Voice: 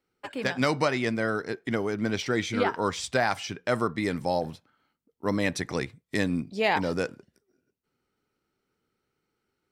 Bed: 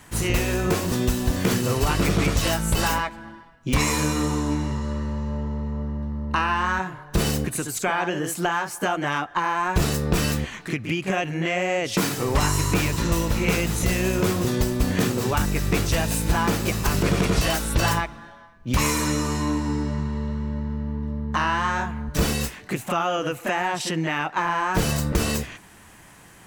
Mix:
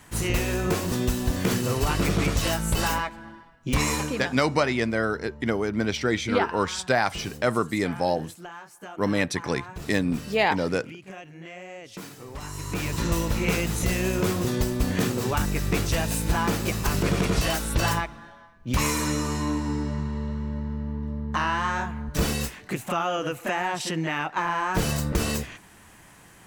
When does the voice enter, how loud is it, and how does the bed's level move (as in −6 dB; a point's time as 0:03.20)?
3.75 s, +2.5 dB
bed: 0:03.94 −2.5 dB
0:04.26 −17 dB
0:12.40 −17 dB
0:12.99 −2.5 dB